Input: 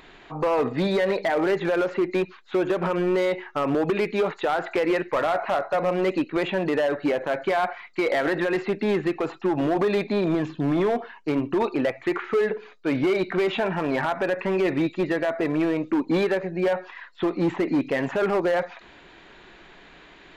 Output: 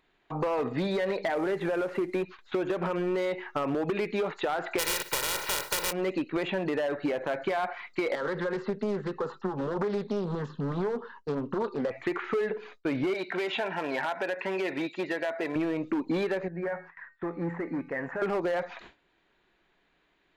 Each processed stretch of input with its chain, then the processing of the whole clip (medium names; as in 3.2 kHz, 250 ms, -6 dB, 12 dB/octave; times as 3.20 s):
1.35–2.23 s: CVSD coder 64 kbps + treble shelf 5 kHz -10.5 dB
4.78–5.91 s: spectral contrast reduction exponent 0.21 + peaking EQ 89 Hz -8 dB 0.88 oct + comb 2.1 ms, depth 72%
8.15–11.91 s: low-pass 6 kHz + static phaser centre 470 Hz, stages 8 + loudspeaker Doppler distortion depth 0.34 ms
13.14–15.56 s: high-pass 650 Hz 6 dB/octave + band-stop 1.2 kHz, Q 6.1
16.48–18.22 s: resonant high shelf 2.4 kHz -9.5 dB, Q 3 + feedback comb 170 Hz, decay 0.52 s, harmonics odd, mix 70%
whole clip: gate with hold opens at -37 dBFS; compression 4:1, threshold -27 dBFS